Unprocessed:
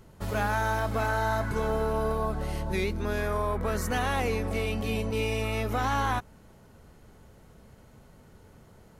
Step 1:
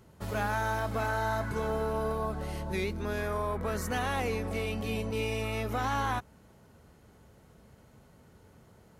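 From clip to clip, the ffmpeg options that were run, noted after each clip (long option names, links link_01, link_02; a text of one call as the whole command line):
ffmpeg -i in.wav -af "highpass=52,volume=-3dB" out.wav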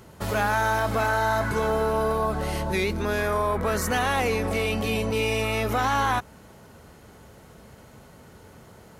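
ffmpeg -i in.wav -filter_complex "[0:a]lowshelf=frequency=330:gain=-5,asplit=2[link_01][link_02];[link_02]alimiter=level_in=7.5dB:limit=-24dB:level=0:latency=1:release=26,volume=-7.5dB,volume=0.5dB[link_03];[link_01][link_03]amix=inputs=2:normalize=0,volume=5.5dB" out.wav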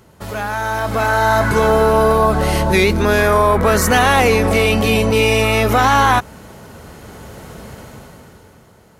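ffmpeg -i in.wav -af "dynaudnorm=framelen=100:gausssize=21:maxgain=15.5dB" out.wav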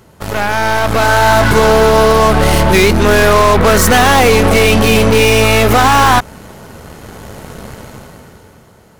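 ffmpeg -i in.wav -filter_complex "[0:a]asplit=2[link_01][link_02];[link_02]aeval=exprs='0.891*sin(PI/2*2.51*val(0)/0.891)':channel_layout=same,volume=-8dB[link_03];[link_01][link_03]amix=inputs=2:normalize=0,aeval=exprs='0.794*(cos(1*acos(clip(val(0)/0.794,-1,1)))-cos(1*PI/2))+0.126*(cos(6*acos(clip(val(0)/0.794,-1,1)))-cos(6*PI/2))+0.0316*(cos(7*acos(clip(val(0)/0.794,-1,1)))-cos(7*PI/2))':channel_layout=same,volume=-1.5dB" out.wav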